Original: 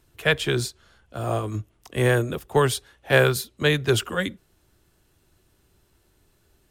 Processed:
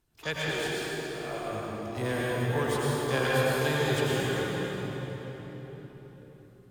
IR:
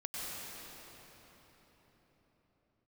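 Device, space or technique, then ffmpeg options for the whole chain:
shimmer-style reverb: -filter_complex "[0:a]asettb=1/sr,asplit=3[s0][s1][s2];[s0]atrim=end=0.494[s3];[s1]atrim=start=0.49:end=1.51,asetpts=PTS-STARTPTS,afade=t=in:d=0.004:c=qsin,afade=t=out:st=1.016:d=0.004:c=qsin,highpass=f=250:w=0.5412,highpass=f=250:w=1.3066[s4];[s2]atrim=start=1.506[s5];[s3][s4]acrossfade=d=0.004:c1=hsin:c2=qsin[s6];[s6][s5]acrossfade=d=0.004:c1=qsin:c2=hsin,asplit=2[s7][s8];[s8]asetrate=88200,aresample=44100,atempo=0.5,volume=0.316[s9];[s7][s9]amix=inputs=2:normalize=0[s10];[1:a]atrim=start_sample=2205[s11];[s10][s11]afir=irnorm=-1:irlink=0,volume=0.376"

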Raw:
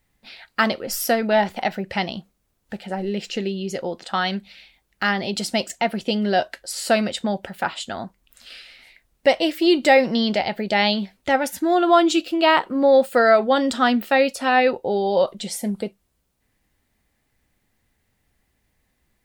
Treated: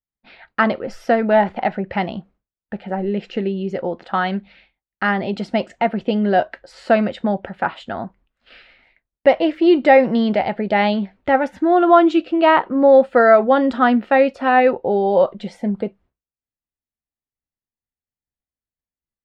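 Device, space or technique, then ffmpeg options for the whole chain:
hearing-loss simulation: -af "lowpass=1800,agate=range=0.0224:threshold=0.00355:ratio=3:detection=peak,volume=1.58"

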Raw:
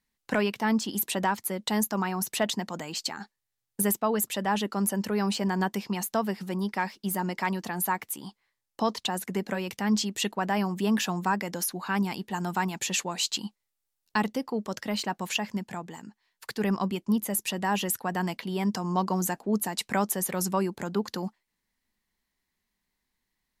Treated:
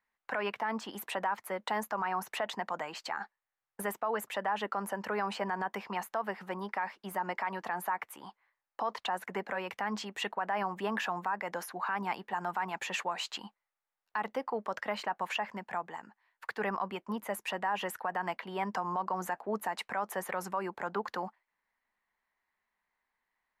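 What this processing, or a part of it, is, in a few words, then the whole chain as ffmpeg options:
DJ mixer with the lows and highs turned down: -filter_complex "[0:a]acrossover=split=580 2100:gain=0.1 1 0.0794[s0][s1][s2];[s0][s1][s2]amix=inputs=3:normalize=0,alimiter=level_in=1.68:limit=0.0631:level=0:latency=1:release=78,volume=0.596,volume=2"

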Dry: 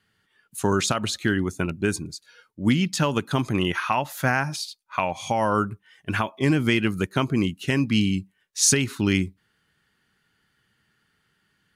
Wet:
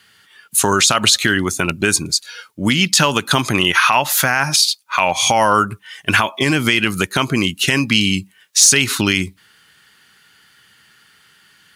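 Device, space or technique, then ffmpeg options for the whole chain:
mastering chain: -af "highpass=60,equalizer=f=1800:t=o:w=0.77:g=-2,acompressor=threshold=0.0631:ratio=3,tiltshelf=f=810:g=-7,asoftclip=type=hard:threshold=0.316,alimiter=level_in=5.96:limit=0.891:release=50:level=0:latency=1,volume=0.891"

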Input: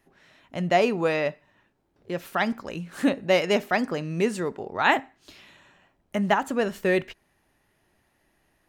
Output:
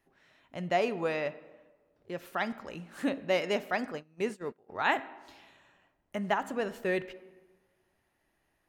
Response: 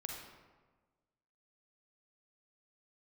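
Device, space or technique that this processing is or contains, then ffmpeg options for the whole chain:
filtered reverb send: -filter_complex "[0:a]asplit=2[s0][s1];[s1]highpass=f=190:w=0.5412,highpass=f=190:w=1.3066,lowpass=3900[s2];[1:a]atrim=start_sample=2205[s3];[s2][s3]afir=irnorm=-1:irlink=0,volume=0.316[s4];[s0][s4]amix=inputs=2:normalize=0,asplit=3[s5][s6][s7];[s5]afade=t=out:st=3.91:d=0.02[s8];[s6]agate=range=0.0631:threshold=0.0501:ratio=16:detection=peak,afade=t=in:st=3.91:d=0.02,afade=t=out:st=4.68:d=0.02[s9];[s7]afade=t=in:st=4.68:d=0.02[s10];[s8][s9][s10]amix=inputs=3:normalize=0,volume=0.376"

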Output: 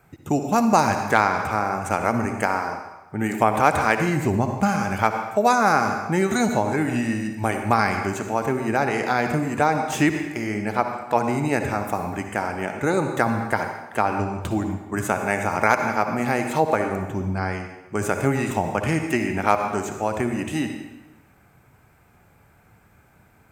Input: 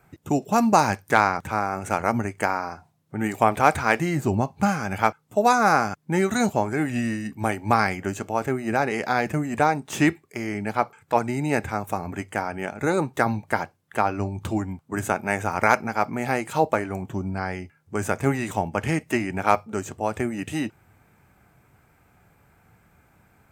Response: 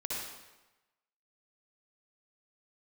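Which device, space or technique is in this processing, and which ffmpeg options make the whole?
ducked reverb: -filter_complex "[0:a]asplit=3[s0][s1][s2];[1:a]atrim=start_sample=2205[s3];[s1][s3]afir=irnorm=-1:irlink=0[s4];[s2]apad=whole_len=1036876[s5];[s4][s5]sidechaincompress=threshold=0.0631:ratio=8:attack=41:release=111,volume=0.562[s6];[s0][s6]amix=inputs=2:normalize=0,volume=0.891"

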